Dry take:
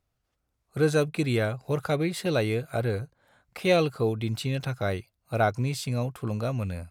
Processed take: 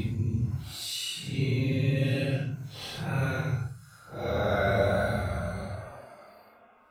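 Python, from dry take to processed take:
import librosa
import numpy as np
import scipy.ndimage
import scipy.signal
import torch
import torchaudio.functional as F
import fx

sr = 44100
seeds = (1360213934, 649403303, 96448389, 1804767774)

y = fx.spec_repair(x, sr, seeds[0], start_s=4.9, length_s=0.32, low_hz=210.0, high_hz=3600.0, source='both')
y = fx.paulstretch(y, sr, seeds[1], factor=8.0, window_s=0.05, from_s=4.28)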